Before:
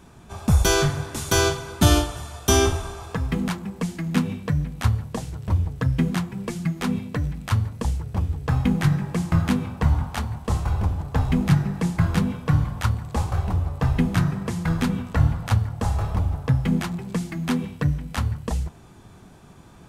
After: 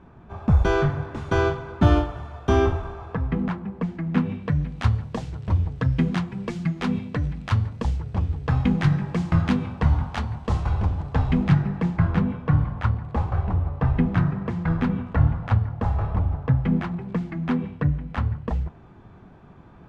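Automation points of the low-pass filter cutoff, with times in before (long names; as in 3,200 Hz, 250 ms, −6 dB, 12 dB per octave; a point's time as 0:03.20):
0:04.03 1,700 Hz
0:04.77 4,300 Hz
0:11.07 4,300 Hz
0:12.13 2,000 Hz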